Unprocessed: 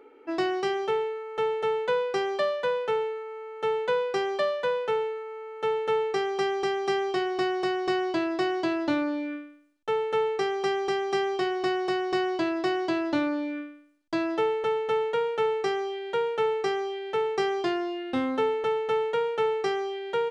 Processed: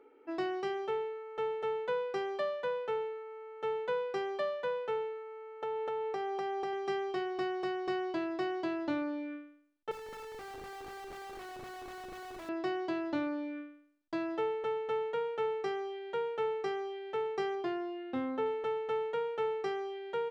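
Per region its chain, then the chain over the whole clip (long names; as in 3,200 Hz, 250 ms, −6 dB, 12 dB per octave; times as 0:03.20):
0:05.62–0:06.73: parametric band 720 Hz +7.5 dB 0.97 octaves + downward compressor 4 to 1, threshold −25 dBFS
0:09.91–0:12.49: high-pass filter 940 Hz + high-frequency loss of the air 310 metres + comparator with hysteresis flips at −41.5 dBFS
0:17.55–0:18.46: high-pass filter 48 Hz + high-shelf EQ 3,800 Hz −7.5 dB
whole clip: high-shelf EQ 3,800 Hz −8 dB; mains-hum notches 60/120/180 Hz; level −7.5 dB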